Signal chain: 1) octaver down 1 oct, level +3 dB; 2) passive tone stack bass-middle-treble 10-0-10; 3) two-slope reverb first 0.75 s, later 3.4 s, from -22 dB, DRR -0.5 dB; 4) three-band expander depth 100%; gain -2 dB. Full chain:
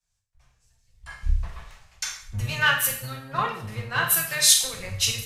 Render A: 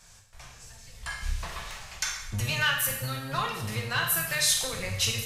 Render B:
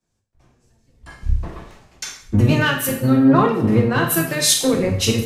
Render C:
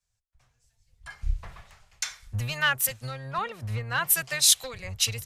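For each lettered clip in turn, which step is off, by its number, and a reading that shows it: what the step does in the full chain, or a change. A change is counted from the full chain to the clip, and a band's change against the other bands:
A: 4, 250 Hz band +4.5 dB; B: 2, 250 Hz band +22.5 dB; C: 3, 125 Hz band +1.5 dB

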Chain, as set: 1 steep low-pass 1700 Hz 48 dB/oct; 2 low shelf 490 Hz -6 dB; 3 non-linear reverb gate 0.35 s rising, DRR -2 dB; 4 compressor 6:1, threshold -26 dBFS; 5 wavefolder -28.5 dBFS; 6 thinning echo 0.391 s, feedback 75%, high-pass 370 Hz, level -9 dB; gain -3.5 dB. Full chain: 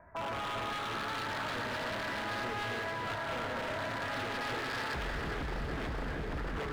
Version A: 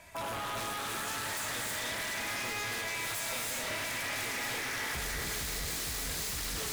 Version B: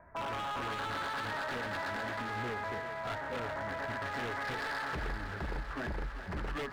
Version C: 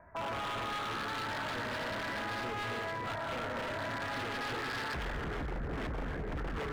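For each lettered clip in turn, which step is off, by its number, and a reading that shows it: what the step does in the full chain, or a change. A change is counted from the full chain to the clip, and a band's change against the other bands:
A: 1, 8 kHz band +21.0 dB; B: 3, 4 kHz band -3.0 dB; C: 6, crest factor change -4.5 dB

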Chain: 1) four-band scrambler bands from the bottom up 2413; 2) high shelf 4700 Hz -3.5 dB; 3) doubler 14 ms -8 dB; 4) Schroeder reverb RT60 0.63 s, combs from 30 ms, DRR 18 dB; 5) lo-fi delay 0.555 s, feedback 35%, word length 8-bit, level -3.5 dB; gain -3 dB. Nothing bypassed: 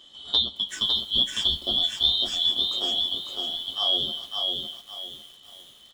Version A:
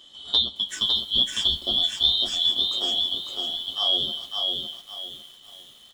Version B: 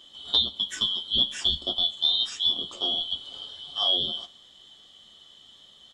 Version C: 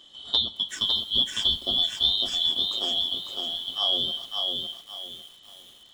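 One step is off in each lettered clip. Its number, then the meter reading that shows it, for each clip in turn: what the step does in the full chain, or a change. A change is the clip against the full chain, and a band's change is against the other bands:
2, 8 kHz band +2.0 dB; 5, momentary loudness spread change -2 LU; 3, momentary loudness spread change -1 LU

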